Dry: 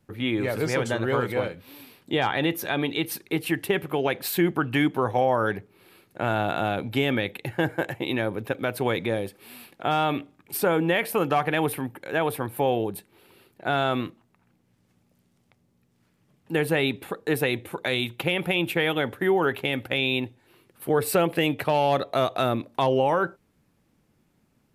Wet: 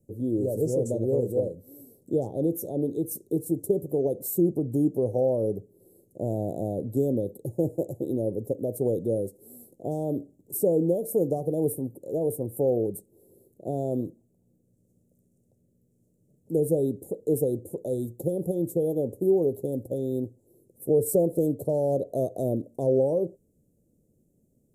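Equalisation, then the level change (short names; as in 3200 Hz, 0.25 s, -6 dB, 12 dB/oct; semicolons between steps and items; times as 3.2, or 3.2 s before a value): elliptic band-stop 490–7300 Hz, stop band 60 dB; bell 620 Hz +6 dB 0.63 oct; notch 4800 Hz, Q 18; 0.0 dB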